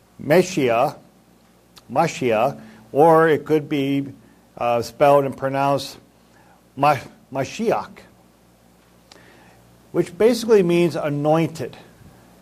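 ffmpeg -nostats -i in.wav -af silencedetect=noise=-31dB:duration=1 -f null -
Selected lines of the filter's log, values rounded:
silence_start: 7.98
silence_end: 9.12 | silence_duration: 1.14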